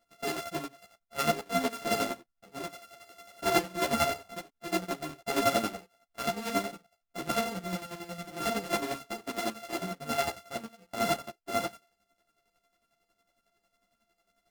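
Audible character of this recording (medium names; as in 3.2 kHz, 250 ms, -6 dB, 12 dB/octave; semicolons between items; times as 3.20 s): a buzz of ramps at a fixed pitch in blocks of 64 samples; chopped level 11 Hz, depth 60%, duty 35%; a shimmering, thickened sound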